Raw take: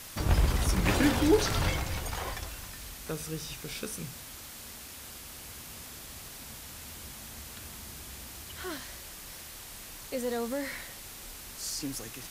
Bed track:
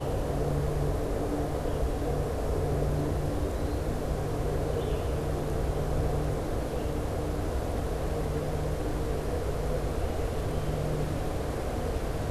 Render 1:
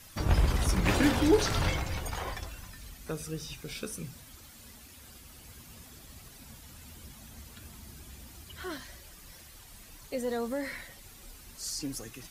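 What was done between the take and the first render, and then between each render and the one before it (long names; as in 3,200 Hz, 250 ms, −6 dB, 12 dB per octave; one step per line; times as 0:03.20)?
broadband denoise 10 dB, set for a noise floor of −46 dBFS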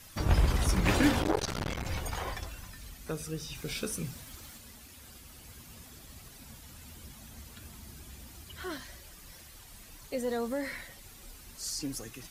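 0:01.22–0:01.85: saturating transformer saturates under 780 Hz
0:03.55–0:04.58: leveller curve on the samples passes 1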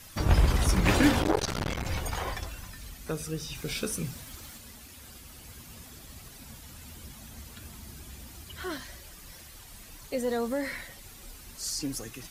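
level +3 dB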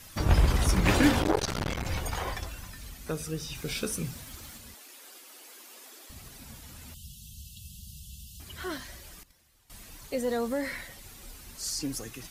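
0:04.74–0:06.10: Butterworth high-pass 310 Hz
0:06.94–0:08.40: linear-phase brick-wall band-stop 210–2,600 Hz
0:09.23–0:09.70: noise gate −44 dBFS, range −17 dB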